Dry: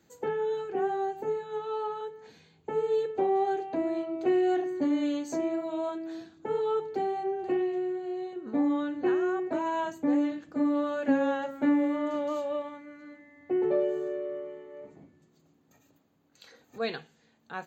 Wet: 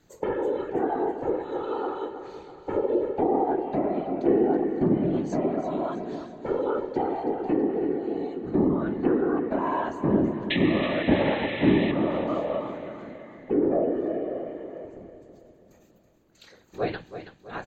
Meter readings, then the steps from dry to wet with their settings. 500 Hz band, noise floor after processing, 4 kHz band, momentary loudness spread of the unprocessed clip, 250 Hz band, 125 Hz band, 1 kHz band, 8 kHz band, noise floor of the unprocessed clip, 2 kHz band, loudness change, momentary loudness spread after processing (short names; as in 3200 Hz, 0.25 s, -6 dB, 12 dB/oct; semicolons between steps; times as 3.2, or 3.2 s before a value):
+3.0 dB, -57 dBFS, +8.0 dB, 13 LU, +4.0 dB, +19.5 dB, +2.5 dB, n/a, -66 dBFS, +5.0 dB, +3.5 dB, 15 LU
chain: whisperiser; low shelf 180 Hz +6.5 dB; painted sound noise, 10.5–11.92, 1700–4100 Hz -26 dBFS; treble ducked by the level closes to 1300 Hz, closed at -22 dBFS; on a send: feedback echo 0.327 s, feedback 51%, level -11 dB; on the sum: gain +2 dB